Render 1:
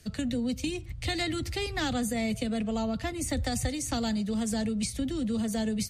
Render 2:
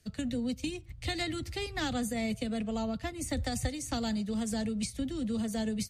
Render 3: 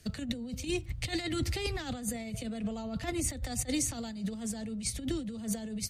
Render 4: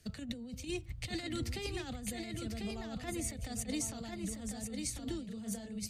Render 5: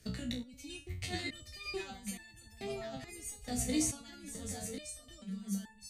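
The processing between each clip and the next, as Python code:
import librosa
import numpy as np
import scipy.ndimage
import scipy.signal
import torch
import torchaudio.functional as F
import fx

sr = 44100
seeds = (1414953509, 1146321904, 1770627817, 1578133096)

y1 = fx.upward_expand(x, sr, threshold_db=-44.0, expansion=1.5)
y1 = y1 * librosa.db_to_amplitude(-1.5)
y2 = fx.over_compress(y1, sr, threshold_db=-37.0, ratio=-0.5)
y2 = y2 * librosa.db_to_amplitude(3.5)
y3 = y2 + 10.0 ** (-5.0 / 20.0) * np.pad(y2, (int(1045 * sr / 1000.0), 0))[:len(y2)]
y3 = y3 * librosa.db_to_amplitude(-6.0)
y4 = fx.resonator_held(y3, sr, hz=2.3, low_hz=62.0, high_hz=880.0)
y4 = y4 * librosa.db_to_amplitude(11.5)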